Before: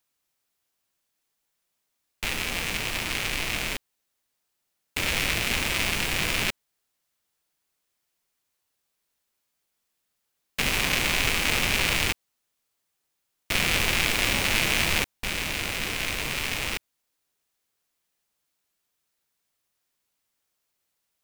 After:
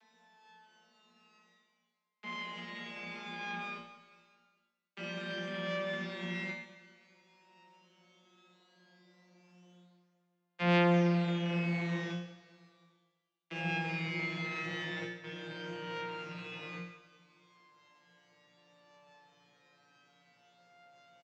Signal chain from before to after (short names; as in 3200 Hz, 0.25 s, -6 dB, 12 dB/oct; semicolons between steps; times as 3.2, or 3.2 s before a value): vocoder on a gliding note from A3, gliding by -8 st; three-band isolator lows -22 dB, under 160 Hz, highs -23 dB, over 5000 Hz; reverse; upward compressor, threshold -31 dBFS; reverse; resonator bank A#2 fifth, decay 0.7 s; feedback echo 0.204 s, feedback 52%, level -18 dB; on a send at -9 dB: reverb RT60 0.60 s, pre-delay 3 ms; on the sum: gain +8 dB